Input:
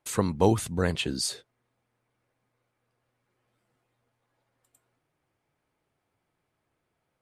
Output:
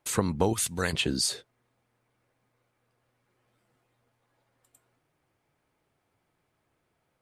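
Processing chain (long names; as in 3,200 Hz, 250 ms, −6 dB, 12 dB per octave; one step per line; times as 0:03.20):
0:00.53–0:00.93: tilt shelving filter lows −8.5 dB, about 1,400 Hz
downward compressor 5 to 1, threshold −24 dBFS, peak gain reduction 9 dB
level +3 dB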